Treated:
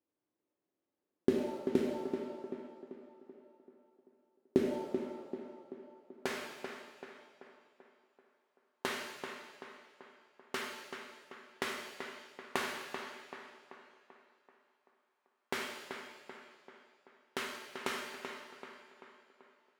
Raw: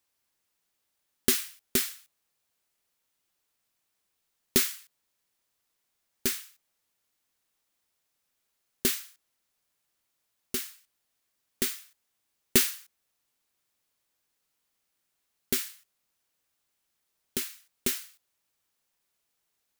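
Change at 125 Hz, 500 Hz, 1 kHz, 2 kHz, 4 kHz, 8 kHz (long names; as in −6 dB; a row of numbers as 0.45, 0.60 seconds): −5.0, +3.0, +8.0, −1.5, −10.0, −19.0 decibels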